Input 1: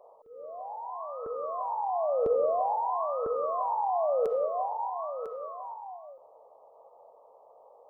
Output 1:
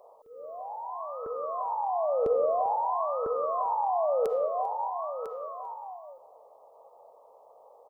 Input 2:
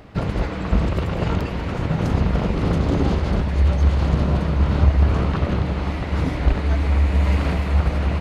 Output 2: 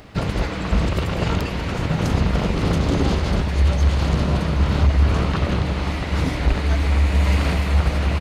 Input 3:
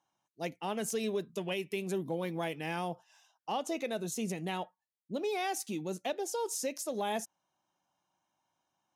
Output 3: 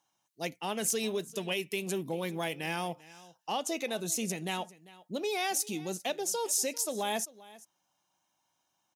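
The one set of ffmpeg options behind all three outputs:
-filter_complex "[0:a]highshelf=frequency=2500:gain=9,asoftclip=type=hard:threshold=-9.5dB,asplit=2[link_01][link_02];[link_02]aecho=0:1:395:0.1[link_03];[link_01][link_03]amix=inputs=2:normalize=0"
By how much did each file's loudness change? +1.0, 0.0, +3.0 LU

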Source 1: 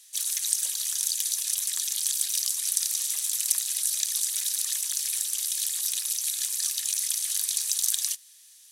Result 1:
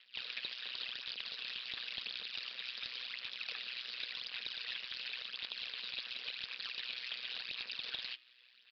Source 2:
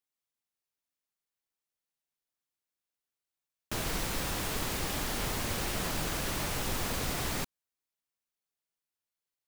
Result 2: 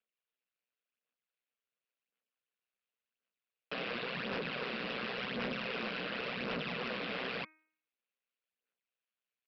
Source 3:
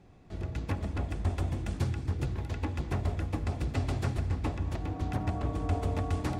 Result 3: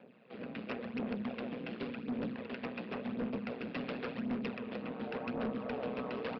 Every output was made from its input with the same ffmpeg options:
-af "aeval=exprs='val(0)*sin(2*PI*94*n/s)':channel_layout=same,aphaser=in_gain=1:out_gain=1:delay=4.2:decay=0.56:speed=0.92:type=sinusoidal,aeval=exprs='val(0)*sin(2*PI*62*n/s)':channel_layout=same,highpass=frequency=200:width=0.5412,highpass=frequency=200:width=1.3066,equalizer=frequency=220:width_type=q:width=4:gain=3,equalizer=frequency=320:width_type=q:width=4:gain=-8,equalizer=frequency=480:width_type=q:width=4:gain=6,equalizer=frequency=870:width_type=q:width=4:gain=-6,equalizer=frequency=1500:width_type=q:width=4:gain=3,equalizer=frequency=2600:width_type=q:width=4:gain=7,lowpass=frequency=3800:width=0.5412,lowpass=frequency=3800:width=1.3066,aresample=11025,asoftclip=type=tanh:threshold=-34.5dB,aresample=44100,bandreject=frequency=313.2:width_type=h:width=4,bandreject=frequency=626.4:width_type=h:width=4,bandreject=frequency=939.6:width_type=h:width=4,bandreject=frequency=1252.8:width_type=h:width=4,bandreject=frequency=1566:width_type=h:width=4,bandreject=frequency=1879.2:width_type=h:width=4,bandreject=frequency=2192.4:width_type=h:width=4,bandreject=frequency=2505.6:width_type=h:width=4,volume=3.5dB"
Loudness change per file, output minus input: −15.5, −4.5, −6.0 LU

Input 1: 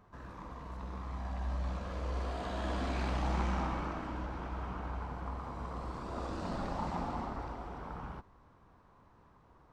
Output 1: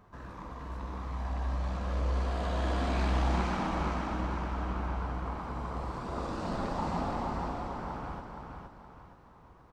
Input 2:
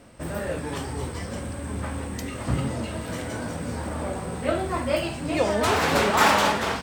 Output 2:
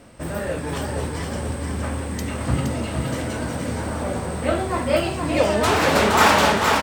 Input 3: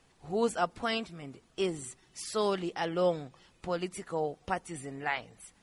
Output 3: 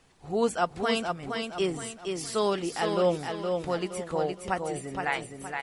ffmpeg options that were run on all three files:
-af "aecho=1:1:468|936|1404|1872|2340:0.562|0.214|0.0812|0.0309|0.0117,volume=3dB"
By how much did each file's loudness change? +4.5, +4.0, +3.5 LU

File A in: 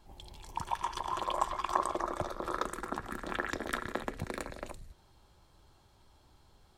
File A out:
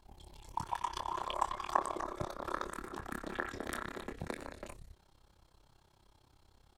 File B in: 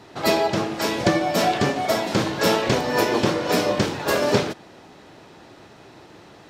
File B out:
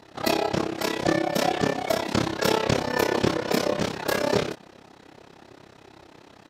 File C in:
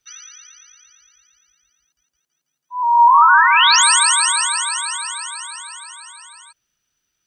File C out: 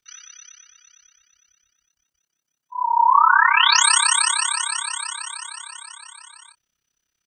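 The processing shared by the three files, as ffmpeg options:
-filter_complex "[0:a]tremolo=f=33:d=0.947,asplit=2[link_01][link_02];[link_02]adelay=25,volume=-7.5dB[link_03];[link_01][link_03]amix=inputs=2:normalize=0"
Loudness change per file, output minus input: −3.0, −3.5, −4.0 LU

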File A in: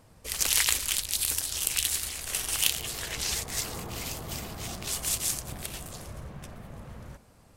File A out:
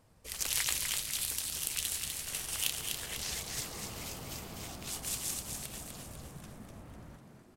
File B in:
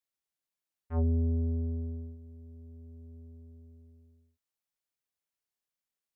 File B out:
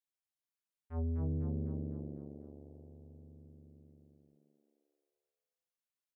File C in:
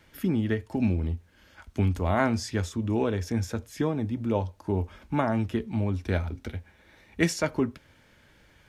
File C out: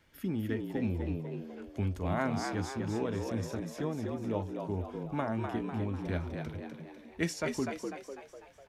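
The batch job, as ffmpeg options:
-filter_complex "[0:a]asplit=7[link_01][link_02][link_03][link_04][link_05][link_06][link_07];[link_02]adelay=249,afreqshift=71,volume=-5dB[link_08];[link_03]adelay=498,afreqshift=142,volume=-11.2dB[link_09];[link_04]adelay=747,afreqshift=213,volume=-17.4dB[link_10];[link_05]adelay=996,afreqshift=284,volume=-23.6dB[link_11];[link_06]adelay=1245,afreqshift=355,volume=-29.8dB[link_12];[link_07]adelay=1494,afreqshift=426,volume=-36dB[link_13];[link_01][link_08][link_09][link_10][link_11][link_12][link_13]amix=inputs=7:normalize=0,volume=-8dB"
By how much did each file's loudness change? −6.5, −7.0, −7.0 LU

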